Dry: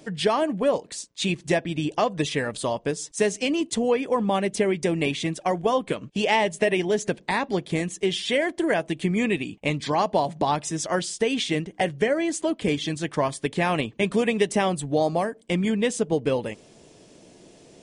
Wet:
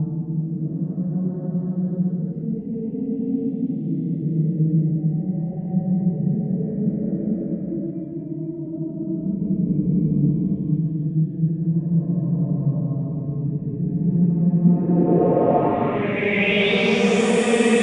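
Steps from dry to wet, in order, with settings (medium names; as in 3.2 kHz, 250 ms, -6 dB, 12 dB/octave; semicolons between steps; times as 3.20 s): reverse echo 492 ms -12.5 dB; Paulstretch 4.9×, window 0.50 s, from 10.63 s; low-pass sweep 180 Hz -> 8.6 kHz, 14.60–17.33 s; trim +5 dB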